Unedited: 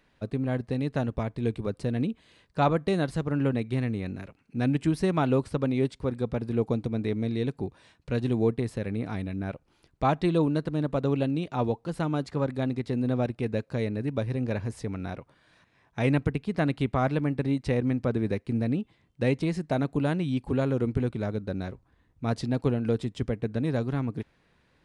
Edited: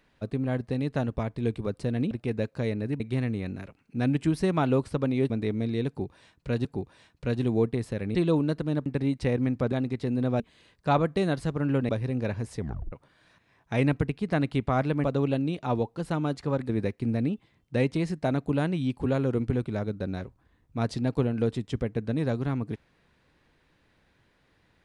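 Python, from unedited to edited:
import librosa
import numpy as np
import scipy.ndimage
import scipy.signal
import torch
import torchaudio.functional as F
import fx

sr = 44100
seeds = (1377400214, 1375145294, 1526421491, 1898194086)

y = fx.edit(x, sr, fx.swap(start_s=2.11, length_s=1.49, other_s=13.26, other_length_s=0.89),
    fx.cut(start_s=5.9, length_s=1.02),
    fx.repeat(start_s=7.5, length_s=0.77, count=2),
    fx.cut(start_s=9.0, length_s=1.22),
    fx.swap(start_s=10.93, length_s=1.65, other_s=17.3, other_length_s=0.86),
    fx.tape_stop(start_s=14.85, length_s=0.33), tone=tone)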